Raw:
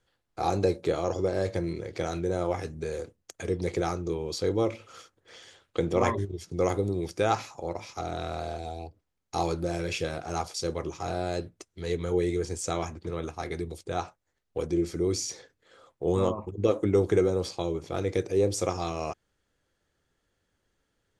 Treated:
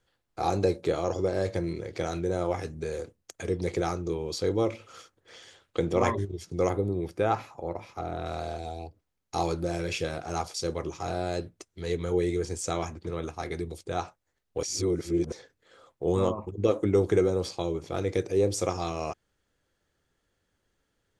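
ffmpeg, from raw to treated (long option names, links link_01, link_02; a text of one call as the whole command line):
ffmpeg -i in.wav -filter_complex "[0:a]asettb=1/sr,asplit=3[link_01][link_02][link_03];[link_01]atrim=end=6.694[link_04];[link_02]atrim=start=6.69:end=8.26,asetpts=PTS-STARTPTS,afade=type=in:duration=0.004:curve=qsin,afade=type=out:start_time=1.566:duration=0.004:curve=qsin,equalizer=frequency=6200:width_type=o:width=1.8:gain=-13[link_05];[link_03]atrim=start=8.256[link_06];[link_04][link_05]acrossfade=duration=0.004:curve1=hsin:curve2=qsin[link_07];[link_07][link_06]acrossfade=duration=0.004:curve1=qsin:curve2=hsin,asplit=3[link_08][link_09][link_10];[link_08]atrim=end=14.632[link_11];[link_09]atrim=start=14.628:end=15.322,asetpts=PTS-STARTPTS,areverse[link_12];[link_10]atrim=start=15.318[link_13];[link_11][link_12]acrossfade=duration=0.004:curve1=hsin:curve2=hsin[link_14];[link_14][link_13]acrossfade=duration=0.004:curve1=hsin:curve2=hsin" out.wav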